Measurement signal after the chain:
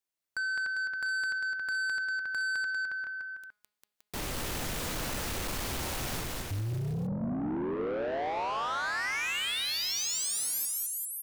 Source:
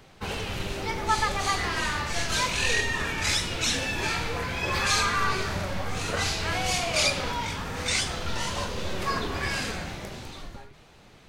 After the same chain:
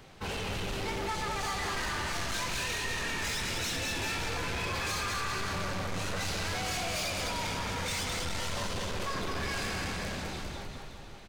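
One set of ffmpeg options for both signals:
-filter_complex "[0:a]acompressor=threshold=0.0501:ratio=6,asplit=2[s0][s1];[s1]aecho=0:1:210|399|569.1|722.2|860:0.631|0.398|0.251|0.158|0.1[s2];[s0][s2]amix=inputs=2:normalize=0,asoftclip=type=tanh:threshold=0.0316,bandreject=f=209.1:t=h:w=4,bandreject=f=418.2:t=h:w=4,bandreject=f=627.3:t=h:w=4,bandreject=f=836.4:t=h:w=4,bandreject=f=1045.5:t=h:w=4,bandreject=f=1254.6:t=h:w=4,bandreject=f=1463.7:t=h:w=4,bandreject=f=1672.8:t=h:w=4,bandreject=f=1881.9:t=h:w=4,bandreject=f=2091:t=h:w=4,bandreject=f=2300.1:t=h:w=4,bandreject=f=2509.2:t=h:w=4,bandreject=f=2718.3:t=h:w=4,bandreject=f=2927.4:t=h:w=4,bandreject=f=3136.5:t=h:w=4,bandreject=f=3345.6:t=h:w=4,bandreject=f=3554.7:t=h:w=4,bandreject=f=3763.8:t=h:w=4,bandreject=f=3972.9:t=h:w=4,bandreject=f=4182:t=h:w=4,bandreject=f=4391.1:t=h:w=4,bandreject=f=4600.2:t=h:w=4,bandreject=f=4809.3:t=h:w=4"

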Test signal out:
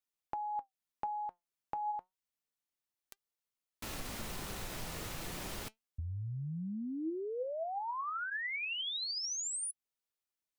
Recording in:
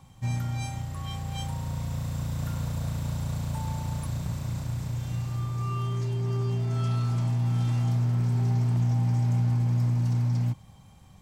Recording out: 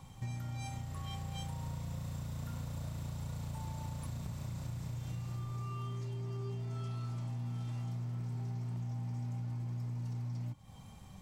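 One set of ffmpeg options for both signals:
-af "bandreject=f=1600:w=29,acompressor=threshold=0.0126:ratio=6,flanger=delay=2:depth=4.5:regen=81:speed=0.3:shape=triangular,volume=1.78"

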